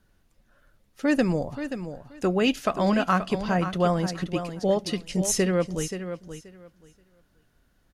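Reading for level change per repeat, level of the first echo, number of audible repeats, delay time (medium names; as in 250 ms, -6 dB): -15.0 dB, -10.0 dB, 2, 529 ms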